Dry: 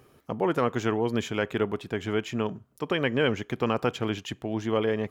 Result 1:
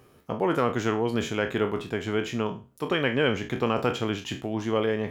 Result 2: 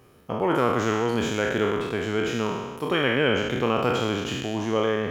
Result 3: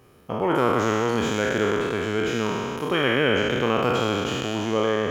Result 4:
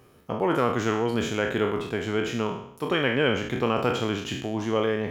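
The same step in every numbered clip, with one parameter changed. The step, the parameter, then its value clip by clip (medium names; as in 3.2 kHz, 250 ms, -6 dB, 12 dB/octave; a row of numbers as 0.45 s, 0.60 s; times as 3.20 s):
spectral sustain, RT60: 0.32 s, 1.44 s, 2.99 s, 0.68 s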